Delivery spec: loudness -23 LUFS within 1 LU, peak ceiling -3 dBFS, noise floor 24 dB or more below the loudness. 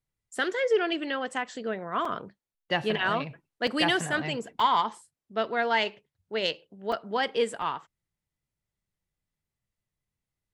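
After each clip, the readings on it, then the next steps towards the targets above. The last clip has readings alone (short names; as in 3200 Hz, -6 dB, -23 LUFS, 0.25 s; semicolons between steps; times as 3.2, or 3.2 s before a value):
dropouts 5; longest dropout 3.9 ms; loudness -28.5 LUFS; peak -11.0 dBFS; loudness target -23.0 LUFS
-> interpolate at 2.05/3.67/4.6/6.92/7.62, 3.9 ms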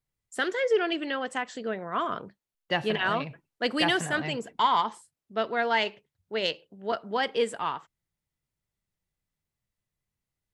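dropouts 0; loudness -28.5 LUFS; peak -11.0 dBFS; loudness target -23.0 LUFS
-> gain +5.5 dB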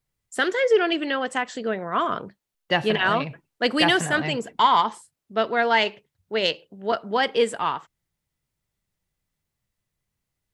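loudness -23.0 LUFS; peak -5.5 dBFS; noise floor -83 dBFS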